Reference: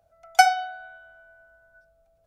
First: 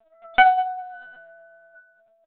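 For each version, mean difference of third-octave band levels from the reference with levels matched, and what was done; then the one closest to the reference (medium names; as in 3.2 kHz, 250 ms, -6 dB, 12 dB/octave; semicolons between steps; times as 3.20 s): 4.0 dB: high-pass 540 Hz 24 dB/octave; on a send: feedback delay 197 ms, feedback 20%, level -19 dB; on the sum: LPC vocoder at 8 kHz pitch kept; loudness maximiser +7 dB; trim -1 dB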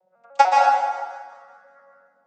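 9.0 dB: vocoder on a broken chord major triad, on F#3, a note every 149 ms; hum notches 60/120/180 Hz; on a send: feedback echo behind a high-pass 191 ms, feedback 44%, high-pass 2.8 kHz, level -13 dB; on the sum: plate-style reverb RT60 1.4 s, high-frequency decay 0.65×, pre-delay 115 ms, DRR -2 dB; trim +1.5 dB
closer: first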